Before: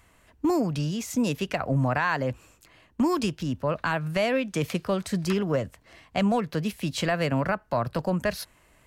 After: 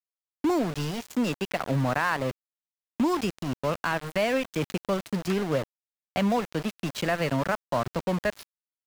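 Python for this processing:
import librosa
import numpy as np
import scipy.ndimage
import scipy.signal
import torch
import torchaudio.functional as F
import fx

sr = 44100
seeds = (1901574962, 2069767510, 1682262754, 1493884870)

y = fx.low_shelf(x, sr, hz=210.0, db=-2.5)
y = np.where(np.abs(y) >= 10.0 ** (-29.5 / 20.0), y, 0.0)
y = fx.high_shelf(y, sr, hz=6100.0, db=-6.5)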